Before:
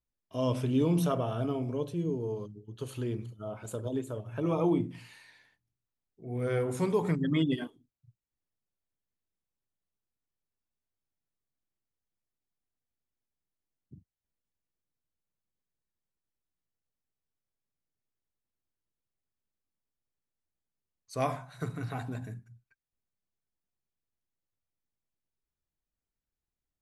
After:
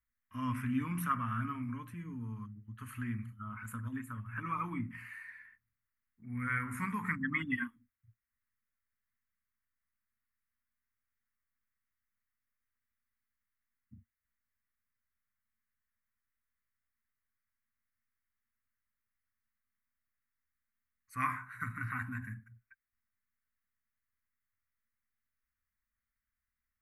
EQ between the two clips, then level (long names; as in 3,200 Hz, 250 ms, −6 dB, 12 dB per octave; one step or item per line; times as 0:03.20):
drawn EQ curve 110 Hz 0 dB, 150 Hz −16 dB, 230 Hz +3 dB, 380 Hz −29 dB, 690 Hz −28 dB, 1,100 Hz +5 dB, 2,000 Hz +11 dB, 3,600 Hz −19 dB, 6,500 Hz −14 dB, 12,000 Hz +2 dB
0.0 dB